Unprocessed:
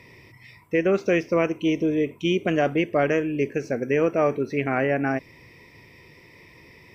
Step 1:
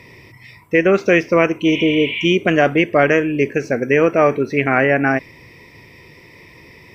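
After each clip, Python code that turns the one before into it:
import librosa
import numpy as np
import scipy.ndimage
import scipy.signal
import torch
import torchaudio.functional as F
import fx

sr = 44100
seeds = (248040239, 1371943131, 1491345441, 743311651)

y = fx.spec_repair(x, sr, seeds[0], start_s=1.74, length_s=0.48, low_hz=850.0, high_hz=5300.0, source='before')
y = fx.dynamic_eq(y, sr, hz=1800.0, q=0.87, threshold_db=-38.0, ratio=4.0, max_db=5)
y = y * librosa.db_to_amplitude(6.5)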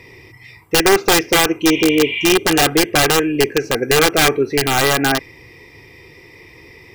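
y = (np.mod(10.0 ** (7.0 / 20.0) * x + 1.0, 2.0) - 1.0) / 10.0 ** (7.0 / 20.0)
y = y + 0.47 * np.pad(y, (int(2.5 * sr / 1000.0), 0))[:len(y)]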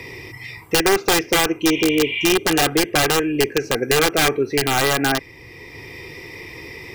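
y = fx.band_squash(x, sr, depth_pct=40)
y = y * librosa.db_to_amplitude(-3.5)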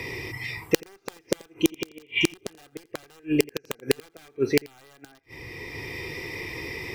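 y = fx.gate_flip(x, sr, shuts_db=-7.0, range_db=-36)
y = y + 10.0 ** (-23.5 / 20.0) * np.pad(y, (int(85 * sr / 1000.0), 0))[:len(y)]
y = y * librosa.db_to_amplitude(1.0)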